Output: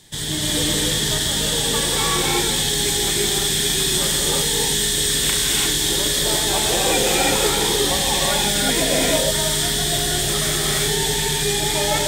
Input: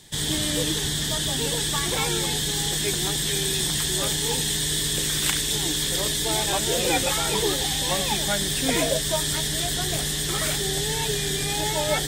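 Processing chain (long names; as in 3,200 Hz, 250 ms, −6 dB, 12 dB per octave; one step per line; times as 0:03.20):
reverb whose tail is shaped and stops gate 380 ms rising, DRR −4 dB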